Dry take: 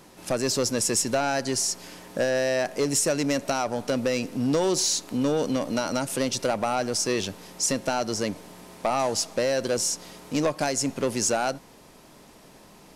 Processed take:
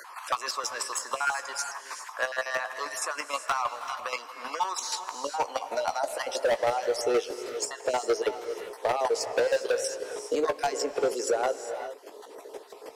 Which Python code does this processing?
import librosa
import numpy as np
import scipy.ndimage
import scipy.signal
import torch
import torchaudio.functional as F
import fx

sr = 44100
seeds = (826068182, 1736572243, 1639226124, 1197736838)

p1 = fx.spec_dropout(x, sr, seeds[0], share_pct=31)
p2 = scipy.signal.sosfilt(scipy.signal.butter(4, 280.0, 'highpass', fs=sr, output='sos'), p1)
p3 = fx.high_shelf(p2, sr, hz=3300.0, db=-6.0)
p4 = fx.rider(p3, sr, range_db=10, speed_s=2.0)
p5 = p3 + F.gain(torch.from_numpy(p4), -1.5).numpy()
p6 = fx.filter_sweep_highpass(p5, sr, from_hz=1100.0, to_hz=440.0, start_s=4.88, end_s=6.92, q=5.2)
p7 = fx.chopper(p6, sr, hz=6.3, depth_pct=60, duty_pct=20)
p8 = np.clip(10.0 ** (16.5 / 20.0) * p7, -1.0, 1.0) / 10.0 ** (16.5 / 20.0)
p9 = fx.doubler(p8, sr, ms=17.0, db=-12.5)
p10 = fx.rev_gated(p9, sr, seeds[1], gate_ms=430, shape='rising', drr_db=11.0)
p11 = fx.band_squash(p10, sr, depth_pct=40)
y = F.gain(torch.from_numpy(p11), -3.5).numpy()